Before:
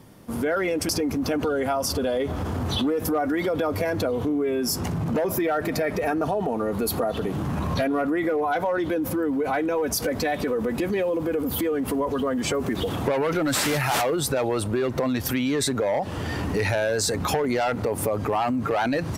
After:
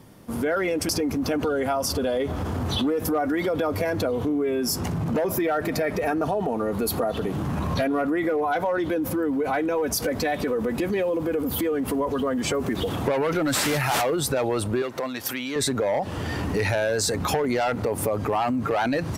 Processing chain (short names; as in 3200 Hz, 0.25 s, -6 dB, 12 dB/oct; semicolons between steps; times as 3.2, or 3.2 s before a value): 14.82–15.56 HPF 630 Hz 6 dB/oct